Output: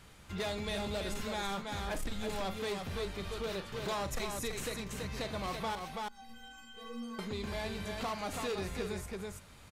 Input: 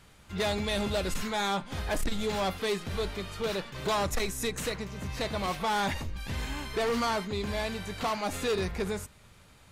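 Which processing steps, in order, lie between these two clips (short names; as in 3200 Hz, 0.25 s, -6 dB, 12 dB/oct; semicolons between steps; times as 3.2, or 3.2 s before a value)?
5.75–7.19 metallic resonator 230 Hz, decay 0.82 s, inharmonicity 0.03; on a send: tapped delay 41/331 ms -12.5/-6 dB; on the sum: compressor 2:1, threshold -40 dBFS, peak gain reduction 8.5 dB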